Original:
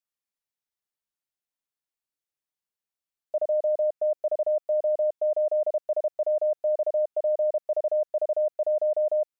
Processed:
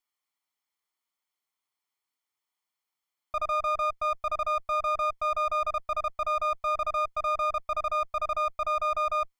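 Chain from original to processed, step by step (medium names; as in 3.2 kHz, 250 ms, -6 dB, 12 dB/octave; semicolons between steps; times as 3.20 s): comb filter that takes the minimum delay 0.93 ms; in parallel at 0 dB: compressor with a negative ratio -33 dBFS, ratio -0.5; on the sum: tone controls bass -15 dB, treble -5 dB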